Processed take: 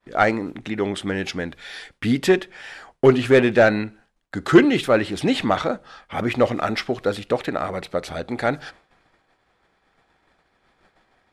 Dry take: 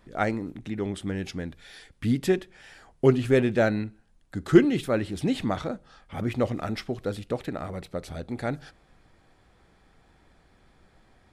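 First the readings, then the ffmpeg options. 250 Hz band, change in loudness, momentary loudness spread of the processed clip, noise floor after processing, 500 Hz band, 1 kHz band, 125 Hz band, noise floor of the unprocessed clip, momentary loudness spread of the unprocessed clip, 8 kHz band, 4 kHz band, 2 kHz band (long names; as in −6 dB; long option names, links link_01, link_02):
+4.5 dB, +6.0 dB, 17 LU, −67 dBFS, +7.0 dB, +10.0 dB, +1.5 dB, −62 dBFS, 16 LU, +6.0 dB, +10.0 dB, +10.5 dB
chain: -filter_complex "[0:a]agate=range=-33dB:threshold=-50dB:ratio=3:detection=peak,asplit=2[link_01][link_02];[link_02]highpass=frequency=720:poles=1,volume=15dB,asoftclip=type=tanh:threshold=-4.5dB[link_03];[link_01][link_03]amix=inputs=2:normalize=0,lowpass=frequency=3300:poles=1,volume=-6dB,volume=3.5dB"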